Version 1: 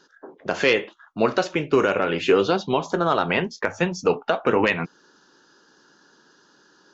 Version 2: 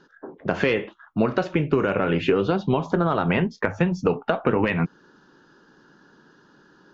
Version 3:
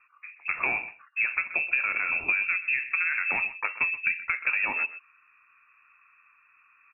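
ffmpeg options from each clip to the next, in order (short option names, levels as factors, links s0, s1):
-af "bass=f=250:g=10,treble=f=4000:g=-14,acompressor=threshold=0.126:ratio=6,volume=1.19"
-filter_complex "[0:a]asplit=2[s0][s1];[s1]adelay=128.3,volume=0.178,highshelf=f=4000:g=-2.89[s2];[s0][s2]amix=inputs=2:normalize=0,lowpass=f=2400:t=q:w=0.5098,lowpass=f=2400:t=q:w=0.6013,lowpass=f=2400:t=q:w=0.9,lowpass=f=2400:t=q:w=2.563,afreqshift=-2800,volume=0.501"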